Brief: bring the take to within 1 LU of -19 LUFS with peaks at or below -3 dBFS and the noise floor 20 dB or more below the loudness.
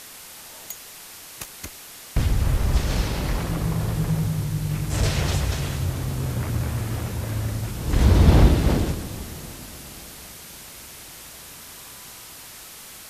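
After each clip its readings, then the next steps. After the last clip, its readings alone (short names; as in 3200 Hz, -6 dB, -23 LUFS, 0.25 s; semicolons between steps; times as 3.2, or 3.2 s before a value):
noise floor -42 dBFS; noise floor target -44 dBFS; loudness -23.5 LUFS; peak -3.0 dBFS; loudness target -19.0 LUFS
-> denoiser 6 dB, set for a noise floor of -42 dBFS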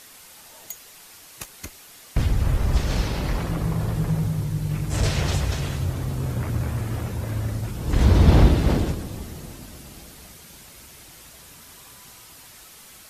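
noise floor -47 dBFS; loudness -23.5 LUFS; peak -3.0 dBFS; loudness target -19.0 LUFS
-> gain +4.5 dB; limiter -3 dBFS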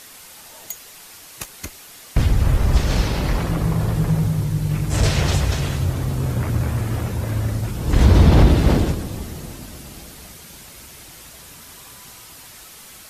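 loudness -19.5 LUFS; peak -3.0 dBFS; noise floor -42 dBFS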